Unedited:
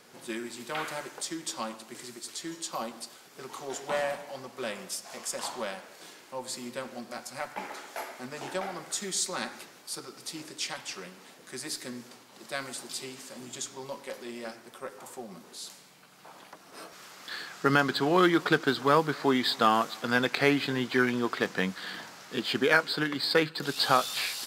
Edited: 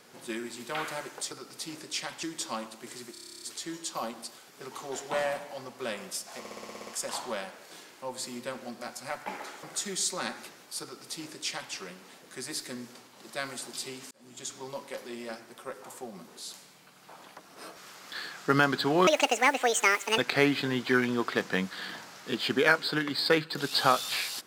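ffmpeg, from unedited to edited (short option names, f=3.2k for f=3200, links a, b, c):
-filter_complex "[0:a]asplit=25[a][b][c][d][e][f][g][h][i][j][k][l][m][n][o][p][q][r][s][t][u][v][w][x][y];[a]atrim=end=1.312[z];[b]atrim=start=9.978:end=10.902[aa];[c]atrim=start=1.308:end=2.232[ab];[d]atrim=start=2.198:end=2.232[ac];[e]atrim=start=2.198:end=2.232[ad];[f]atrim=start=2.198:end=2.232[ae];[g]atrim=start=2.198:end=2.232[af];[h]atrim=start=2.198:end=2.232[ag];[i]atrim=start=2.198:end=2.232[ah];[j]atrim=start=2.198:end=2.232[ai];[k]atrim=start=2.198:end=2.232[aj];[l]atrim=start=2.198:end=2.232[ak];[m]atrim=start=2.198:end=5.232[al];[n]atrim=start=5.168:end=5.232[am];[o]atrim=start=5.168:end=5.232[an];[p]atrim=start=5.168:end=5.232[ao];[q]atrim=start=5.168:end=5.232[ap];[r]atrim=start=5.168:end=5.232[aq];[s]atrim=start=5.168:end=5.232[ar];[t]atrim=start=5.168:end=5.232[as];[u]atrim=start=5.168:end=7.932[at];[v]atrim=start=8.788:end=13.27,asetpts=PTS-STARTPTS,afade=t=out:st=4.478:d=0.004:c=hsin[au];[w]atrim=start=13.27:end=18.234,asetpts=PTS-STARTPTS,afade=t=in:d=0.45[av];[x]atrim=start=18.23:end=20.23,asetpts=PTS-STARTPTS,asetrate=79380,aresample=44100[aw];[y]atrim=start=20.226[ax];[z][aa]acrossfade=d=0.004:c1=hsin:c2=hsin[ay];[ay][ab]acrossfade=d=0.004:c1=hsin:c2=hsin[az];[az][ac]acrossfade=d=0.004:c1=hsin:c2=hsin[ba];[ba][ad]acrossfade=d=0.004:c1=hsin:c2=hsin[bb];[bb][ae]acrossfade=d=0.004:c1=hsin:c2=hsin[bc];[bc][af]acrossfade=d=0.004:c1=hsin:c2=hsin[bd];[bd][ag]acrossfade=d=0.004:c1=hsin:c2=hsin[be];[be][ah]acrossfade=d=0.004:c1=hsin:c2=hsin[bf];[bf][ai]acrossfade=d=0.004:c1=hsin:c2=hsin[bg];[bg][aj]acrossfade=d=0.004:c1=hsin:c2=hsin[bh];[bh][ak]acrossfade=d=0.004:c1=hsin:c2=hsin[bi];[bi][al]acrossfade=d=0.004:c1=hsin:c2=hsin[bj];[bj][am]acrossfade=d=0.004:c1=hsin:c2=hsin[bk];[bk][an]acrossfade=d=0.004:c1=hsin:c2=hsin[bl];[bl][ao]acrossfade=d=0.004:c1=hsin:c2=hsin[bm];[bm][ap]acrossfade=d=0.004:c1=hsin:c2=hsin[bn];[bn][aq]acrossfade=d=0.004:c1=hsin:c2=hsin[bo];[bo][ar]acrossfade=d=0.004:c1=hsin:c2=hsin[bp];[bp][as]acrossfade=d=0.004:c1=hsin:c2=hsin[bq];[bq][at]acrossfade=d=0.004:c1=hsin:c2=hsin[br];[au][av]concat=n=2:v=0:a=1[bs];[br][bs]acrossfade=d=0.004:c1=hsin:c2=hsin[bt];[bt][aw]acrossfade=d=0.004:c1=hsin:c2=hsin[bu];[bu][ax]acrossfade=d=0.004:c1=hsin:c2=hsin"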